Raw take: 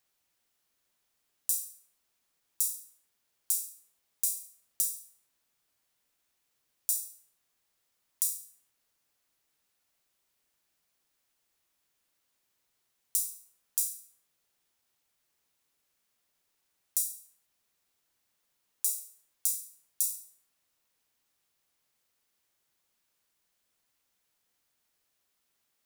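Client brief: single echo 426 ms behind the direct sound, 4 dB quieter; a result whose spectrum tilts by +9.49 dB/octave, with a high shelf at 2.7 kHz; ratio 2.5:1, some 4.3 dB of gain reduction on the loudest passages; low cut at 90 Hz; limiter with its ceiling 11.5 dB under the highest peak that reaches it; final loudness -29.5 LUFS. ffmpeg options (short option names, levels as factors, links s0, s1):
-af "highpass=90,highshelf=f=2700:g=5.5,acompressor=threshold=0.0447:ratio=2.5,alimiter=limit=0.211:level=0:latency=1,aecho=1:1:426:0.631,volume=2.11"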